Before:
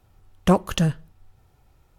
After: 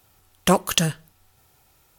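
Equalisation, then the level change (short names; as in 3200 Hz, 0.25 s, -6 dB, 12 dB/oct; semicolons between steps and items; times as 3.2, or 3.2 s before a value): tilt +3.5 dB/oct; low shelf 410 Hz +4.5 dB; +2.0 dB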